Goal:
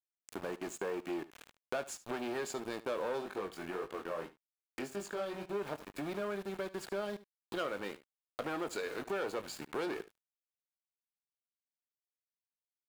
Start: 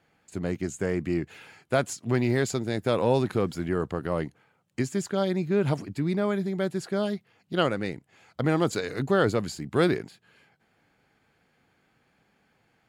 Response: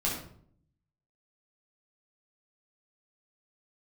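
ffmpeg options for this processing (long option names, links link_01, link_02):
-filter_complex "[0:a]asoftclip=type=tanh:threshold=-24dB,highpass=420,asplit=2[link_01][link_02];[link_02]adelay=20,volume=-11dB[link_03];[link_01][link_03]amix=inputs=2:normalize=0,aeval=exprs='val(0)*gte(abs(val(0)),0.00944)':channel_layout=same,equalizer=frequency=5500:width_type=o:width=0.87:gain=-3.5,asplit=3[link_04][link_05][link_06];[link_04]afade=type=out:start_time=3.2:duration=0.02[link_07];[link_05]flanger=delay=19.5:depth=5.1:speed=1.8,afade=type=in:start_time=3.2:duration=0.02,afade=type=out:start_time=5.54:duration=0.02[link_08];[link_06]afade=type=in:start_time=5.54:duration=0.02[link_09];[link_07][link_08][link_09]amix=inputs=3:normalize=0,highshelf=frequency=4300:gain=-6,bandreject=frequency=2000:width=12,aecho=1:1:73:0.112,acompressor=threshold=-59dB:ratio=2,volume=11.5dB"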